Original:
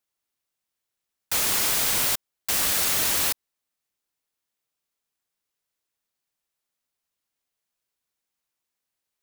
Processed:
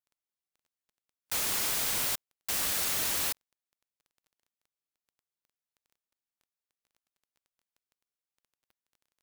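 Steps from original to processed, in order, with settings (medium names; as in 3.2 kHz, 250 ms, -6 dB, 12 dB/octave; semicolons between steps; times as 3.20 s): spectral noise reduction 6 dB; crackle 12 per s -45 dBFS; trim -7 dB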